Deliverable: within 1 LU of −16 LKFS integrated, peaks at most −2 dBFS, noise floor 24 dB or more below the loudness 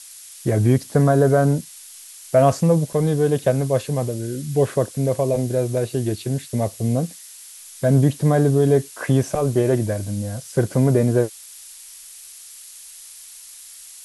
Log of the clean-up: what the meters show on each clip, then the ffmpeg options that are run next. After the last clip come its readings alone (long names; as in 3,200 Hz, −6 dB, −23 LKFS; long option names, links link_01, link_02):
background noise floor −42 dBFS; target noise floor −44 dBFS; integrated loudness −20.0 LKFS; sample peak −4.0 dBFS; target loudness −16.0 LKFS
→ -af "afftdn=noise_reduction=6:noise_floor=-42"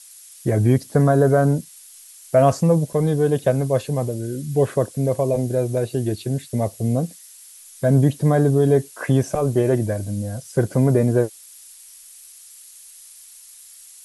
background noise floor −45 dBFS; integrated loudness −20.0 LKFS; sample peak −4.0 dBFS; target loudness −16.0 LKFS
→ -af "volume=4dB,alimiter=limit=-2dB:level=0:latency=1"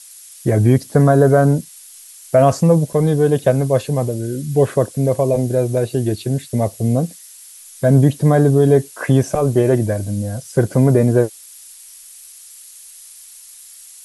integrated loudness −16.5 LKFS; sample peak −2.0 dBFS; background noise floor −41 dBFS